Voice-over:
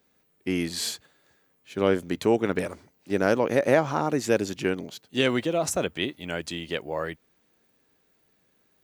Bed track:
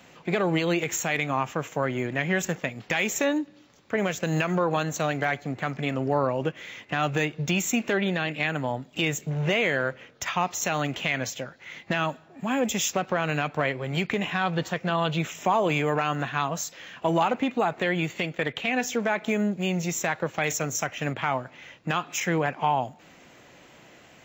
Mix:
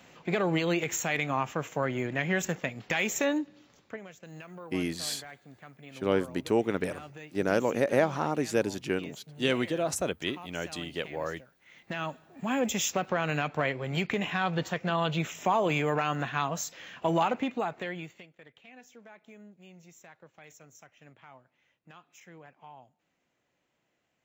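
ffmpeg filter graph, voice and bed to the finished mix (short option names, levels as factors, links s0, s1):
-filter_complex "[0:a]adelay=4250,volume=0.631[s0];[1:a]volume=5.31,afade=t=out:st=3.79:d=0.2:silence=0.133352,afade=t=in:st=11.58:d=0.87:silence=0.133352,afade=t=out:st=17.23:d=1.04:silence=0.0707946[s1];[s0][s1]amix=inputs=2:normalize=0"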